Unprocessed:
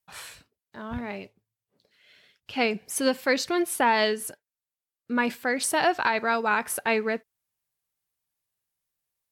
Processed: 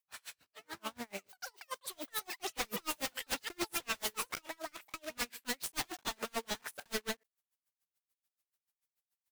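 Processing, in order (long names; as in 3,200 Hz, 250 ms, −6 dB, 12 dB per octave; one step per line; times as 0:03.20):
one scale factor per block 3 bits
delay with pitch and tempo change per echo 89 ms, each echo +6 semitones, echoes 3, each echo −6 dB
low-shelf EQ 480 Hz −10 dB
wave folding −28 dBFS
automatic gain control gain up to 3.5 dB
tremolo with a sine in dB 6.9 Hz, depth 39 dB
level −2 dB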